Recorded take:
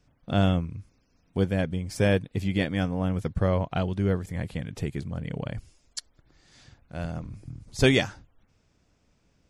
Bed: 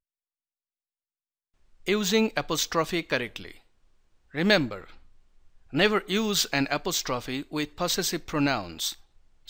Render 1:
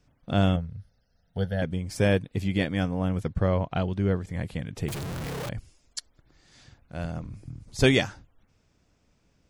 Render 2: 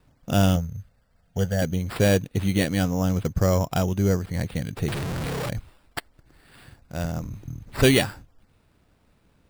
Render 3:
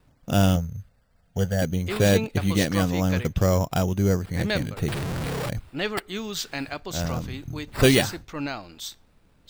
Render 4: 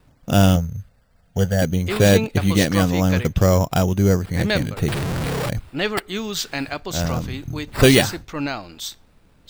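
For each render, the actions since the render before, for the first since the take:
0:00.56–0:01.62: phaser with its sweep stopped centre 1,600 Hz, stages 8; 0:03.23–0:04.32: high-frequency loss of the air 50 metres; 0:04.88–0:05.49: sign of each sample alone
in parallel at −3 dB: soft clipping −20.5 dBFS, distortion −10 dB; on the sum: decimation without filtering 7×
mix in bed −6 dB
level +5 dB; brickwall limiter −1 dBFS, peak gain reduction 1 dB

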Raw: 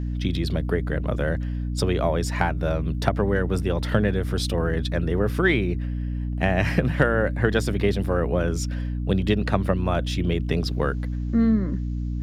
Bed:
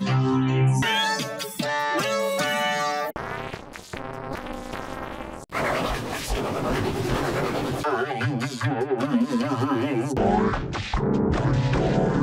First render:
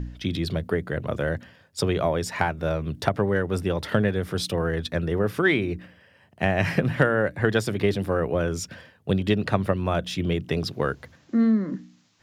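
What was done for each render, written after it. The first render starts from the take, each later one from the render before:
hum removal 60 Hz, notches 5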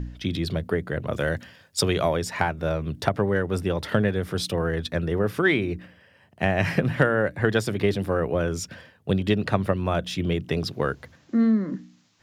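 0:01.13–0:02.17: high-shelf EQ 2,200 Hz +8 dB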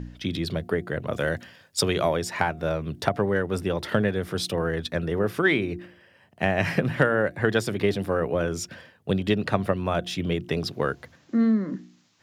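low-shelf EQ 69 Hz −10.5 dB
hum removal 352.8 Hz, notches 2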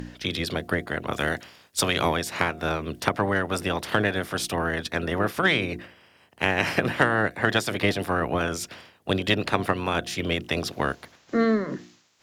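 ceiling on every frequency bin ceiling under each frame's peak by 16 dB
harmonic generator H 8 −36 dB, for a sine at −4.5 dBFS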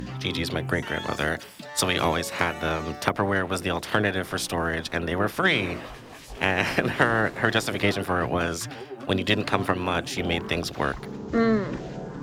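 mix in bed −14 dB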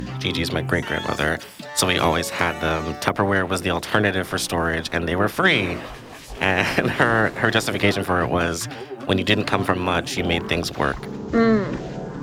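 level +4.5 dB
brickwall limiter −3 dBFS, peak gain reduction 2.5 dB

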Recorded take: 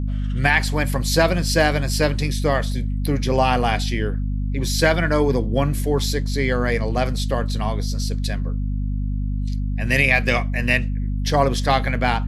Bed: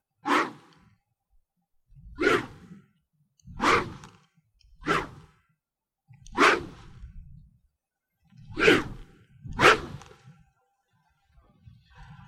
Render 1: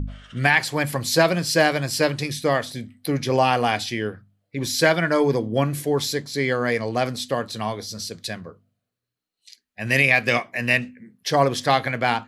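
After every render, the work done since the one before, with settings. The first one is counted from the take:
hum removal 50 Hz, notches 5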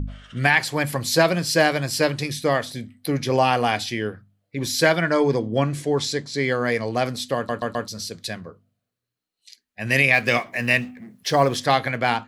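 0:05.01–0:06.43: low-pass filter 9,100 Hz 24 dB per octave
0:07.36: stutter in place 0.13 s, 4 plays
0:10.13–0:11.57: mu-law and A-law mismatch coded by mu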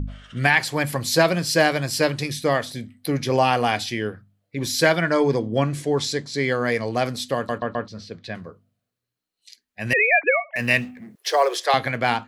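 0:07.58–0:08.35: low-pass filter 2,600 Hz
0:09.93–0:10.56: three sine waves on the formant tracks
0:11.15–0:11.74: Butterworth high-pass 340 Hz 96 dB per octave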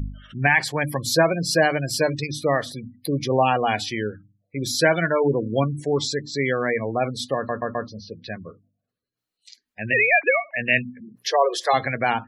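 gate on every frequency bin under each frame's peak −20 dB strong
mains-hum notches 60/120/180/240/300 Hz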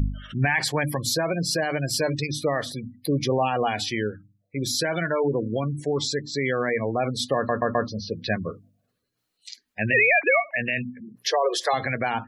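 brickwall limiter −15 dBFS, peak gain reduction 10 dB
speech leveller 2 s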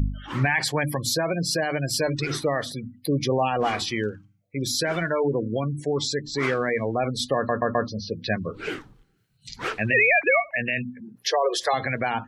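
mix in bed −12.5 dB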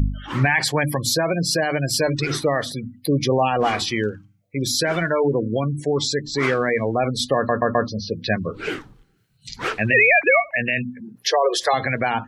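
level +4 dB

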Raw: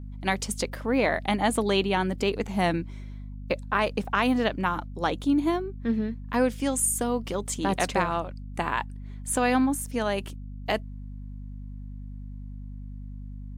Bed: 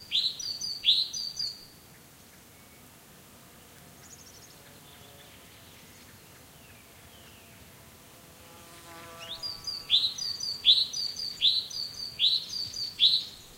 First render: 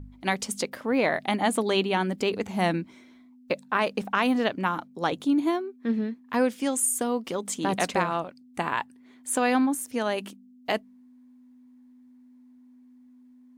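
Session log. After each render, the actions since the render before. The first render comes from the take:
hum removal 50 Hz, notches 4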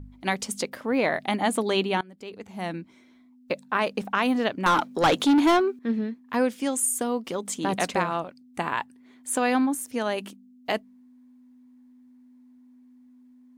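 0:02.01–0:03.68: fade in, from −24 dB
0:04.66–0:05.79: mid-hump overdrive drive 24 dB, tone 5,800 Hz, clips at −11.5 dBFS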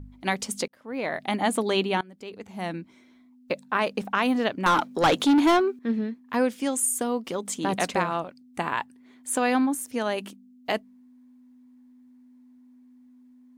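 0:00.68–0:01.39: fade in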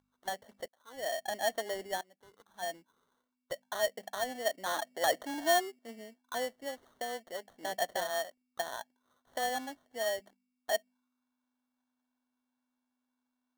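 envelope filter 660–1,600 Hz, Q 6.3, down, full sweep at −27.5 dBFS
sample-rate reduction 2,500 Hz, jitter 0%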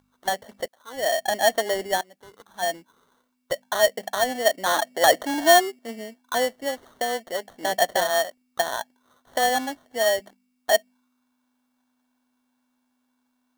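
level +12 dB

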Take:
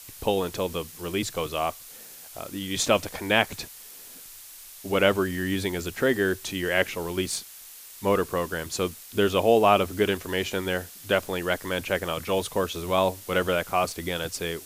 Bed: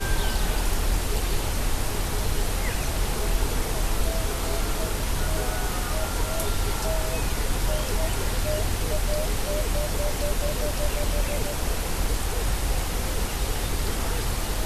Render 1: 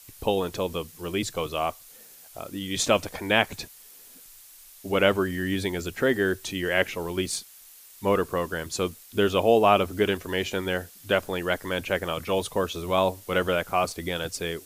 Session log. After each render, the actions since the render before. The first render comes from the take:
broadband denoise 6 dB, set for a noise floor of −45 dBFS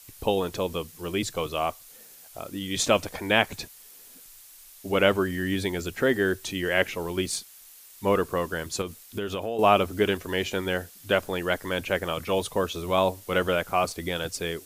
0:08.81–0:09.59: downward compressor 5 to 1, threshold −27 dBFS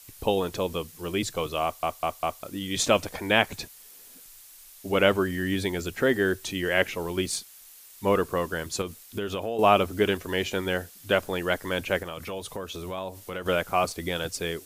0:01.63: stutter in place 0.20 s, 4 plays
0:12.02–0:13.46: downward compressor 3 to 1, threshold −33 dBFS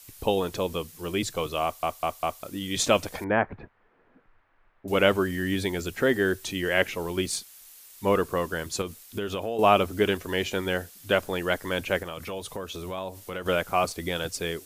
0:03.24–0:04.88: low-pass filter 1,700 Hz 24 dB per octave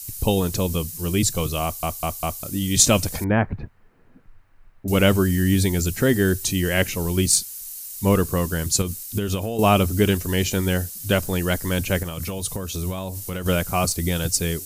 bass and treble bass +15 dB, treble +15 dB
notch filter 3,400 Hz, Q 14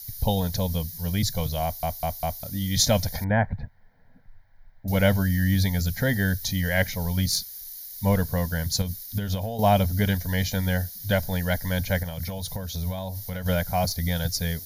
phaser with its sweep stopped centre 1,800 Hz, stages 8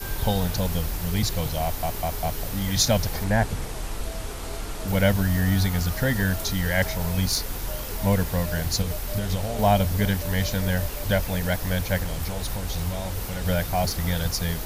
mix in bed −6.5 dB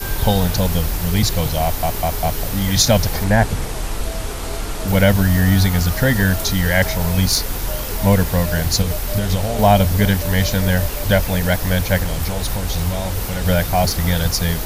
level +7.5 dB
brickwall limiter −2 dBFS, peak gain reduction 2.5 dB

